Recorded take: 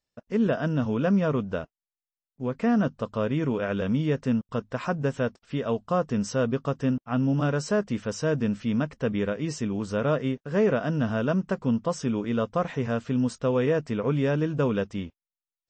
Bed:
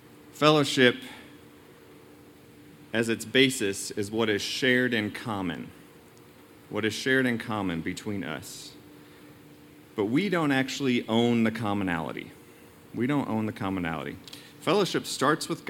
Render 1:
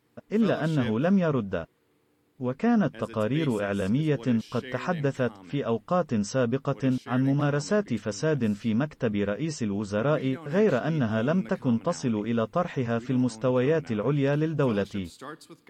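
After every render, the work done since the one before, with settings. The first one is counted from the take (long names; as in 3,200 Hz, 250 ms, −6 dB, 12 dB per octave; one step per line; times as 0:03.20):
mix in bed −17 dB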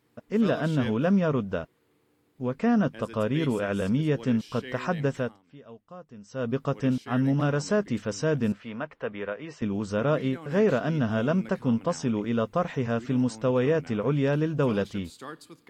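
0:05.14–0:06.57: duck −19.5 dB, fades 0.29 s
0:08.52–0:09.62: three-way crossover with the lows and the highs turned down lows −14 dB, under 460 Hz, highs −18 dB, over 3,100 Hz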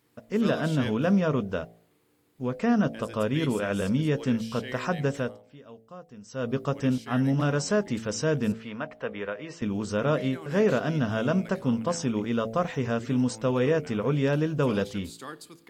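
high-shelf EQ 4,400 Hz +6.5 dB
hum removal 56.2 Hz, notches 15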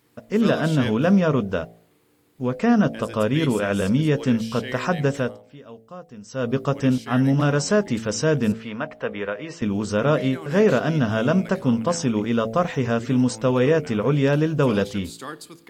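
level +5.5 dB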